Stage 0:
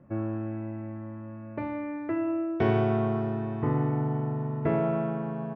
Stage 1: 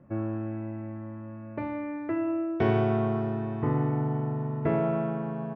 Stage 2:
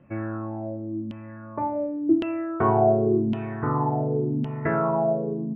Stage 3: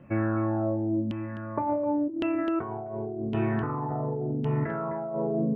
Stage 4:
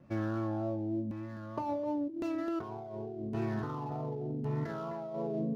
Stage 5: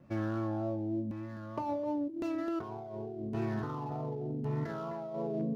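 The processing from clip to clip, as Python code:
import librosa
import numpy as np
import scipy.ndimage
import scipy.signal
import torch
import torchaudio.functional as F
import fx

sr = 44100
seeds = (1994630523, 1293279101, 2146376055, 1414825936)

y1 = x
y2 = fx.filter_lfo_lowpass(y1, sr, shape='saw_down', hz=0.9, low_hz=240.0, high_hz=3000.0, q=5.7)
y3 = y2 + 10.0 ** (-12.0 / 20.0) * np.pad(y2, (int(258 * sr / 1000.0), 0))[:len(y2)]
y3 = fx.over_compress(y3, sr, threshold_db=-29.0, ratio=-1.0)
y4 = scipy.ndimage.median_filter(y3, 15, mode='constant')
y4 = fx.vibrato(y4, sr, rate_hz=3.3, depth_cents=30.0)
y4 = F.gain(torch.from_numpy(y4), -7.0).numpy()
y5 = np.clip(y4, -10.0 ** (-25.5 / 20.0), 10.0 ** (-25.5 / 20.0))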